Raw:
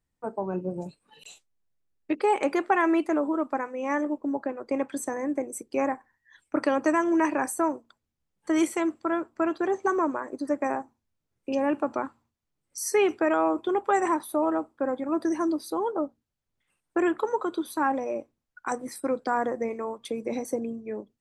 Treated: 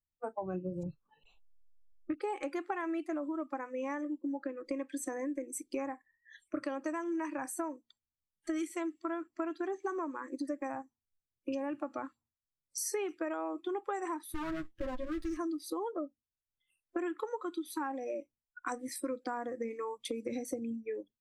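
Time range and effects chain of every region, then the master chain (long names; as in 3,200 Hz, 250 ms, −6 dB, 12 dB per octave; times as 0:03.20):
0:00.83–0:02.14: low-shelf EQ 200 Hz +6 dB + envelope-controlled low-pass 630–1,300 Hz up, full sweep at −40 dBFS
0:14.34–0:15.37: lower of the sound and its delayed copy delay 9 ms + hard clipping −24 dBFS
whole clip: noise reduction from a noise print of the clip's start 21 dB; low-shelf EQ 130 Hz +9 dB; downward compressor 6 to 1, threshold −34 dBFS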